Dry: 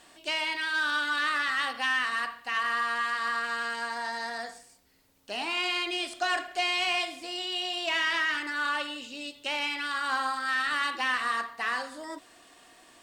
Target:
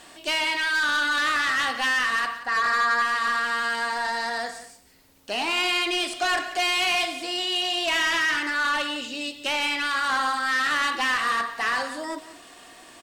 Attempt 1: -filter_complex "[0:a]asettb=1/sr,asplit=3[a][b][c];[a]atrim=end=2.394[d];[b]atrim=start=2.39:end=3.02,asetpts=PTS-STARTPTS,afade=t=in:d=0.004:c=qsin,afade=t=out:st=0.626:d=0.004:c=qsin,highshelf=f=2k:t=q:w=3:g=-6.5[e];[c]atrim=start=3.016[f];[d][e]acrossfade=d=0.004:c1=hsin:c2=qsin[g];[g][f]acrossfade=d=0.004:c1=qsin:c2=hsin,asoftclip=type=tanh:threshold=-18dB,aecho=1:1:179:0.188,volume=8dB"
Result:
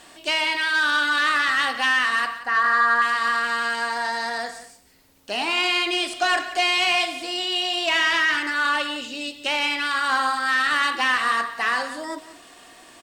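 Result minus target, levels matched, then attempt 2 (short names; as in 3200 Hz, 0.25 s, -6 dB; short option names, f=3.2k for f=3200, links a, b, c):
soft clip: distortion -12 dB
-filter_complex "[0:a]asettb=1/sr,asplit=3[a][b][c];[a]atrim=end=2.394[d];[b]atrim=start=2.39:end=3.02,asetpts=PTS-STARTPTS,afade=t=in:d=0.004:c=qsin,afade=t=out:st=0.626:d=0.004:c=qsin,highshelf=f=2k:t=q:w=3:g=-6.5[e];[c]atrim=start=3.016[f];[d][e]acrossfade=d=0.004:c1=hsin:c2=qsin[g];[g][f]acrossfade=d=0.004:c1=qsin:c2=hsin,asoftclip=type=tanh:threshold=-27dB,aecho=1:1:179:0.188,volume=8dB"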